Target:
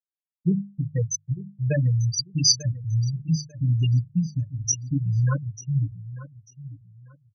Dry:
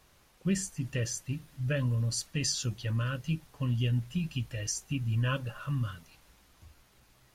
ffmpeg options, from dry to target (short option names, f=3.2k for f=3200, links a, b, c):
-filter_complex "[0:a]highshelf=f=2.5k:g=3,acrossover=split=210[a][b];[b]aeval=exprs='val(0)*gte(abs(val(0)),0.0158)':c=same[c];[a][c]amix=inputs=2:normalize=0,aresample=16000,aresample=44100,afftfilt=real='re*gte(hypot(re,im),0.112)':imag='im*gte(hypot(re,im),0.112)':win_size=1024:overlap=0.75,bandreject=f=50:t=h:w=6,bandreject=f=100:t=h:w=6,bandreject=f=150:t=h:w=6,bandreject=f=200:t=h:w=6,aecho=1:1:6.4:0.48,aecho=1:1:894|1788|2682:0.168|0.0436|0.0113,adynamicequalizer=threshold=0.00447:dfrequency=5100:dqfactor=1.2:tfrequency=5100:tqfactor=1.2:attack=5:release=100:ratio=0.375:range=3.5:mode=boostabove:tftype=bell,volume=7.5dB"